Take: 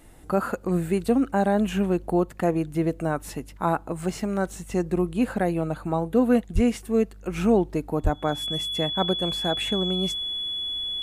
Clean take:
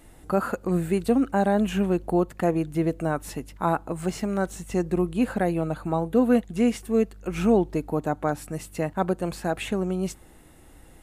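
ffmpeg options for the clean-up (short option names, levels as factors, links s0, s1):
-filter_complex "[0:a]bandreject=f=3400:w=30,asplit=3[s0][s1][s2];[s0]afade=t=out:st=6.54:d=0.02[s3];[s1]highpass=f=140:w=0.5412,highpass=f=140:w=1.3066,afade=t=in:st=6.54:d=0.02,afade=t=out:st=6.66:d=0.02[s4];[s2]afade=t=in:st=6.66:d=0.02[s5];[s3][s4][s5]amix=inputs=3:normalize=0,asplit=3[s6][s7][s8];[s6]afade=t=out:st=8.03:d=0.02[s9];[s7]highpass=f=140:w=0.5412,highpass=f=140:w=1.3066,afade=t=in:st=8.03:d=0.02,afade=t=out:st=8.15:d=0.02[s10];[s8]afade=t=in:st=8.15:d=0.02[s11];[s9][s10][s11]amix=inputs=3:normalize=0"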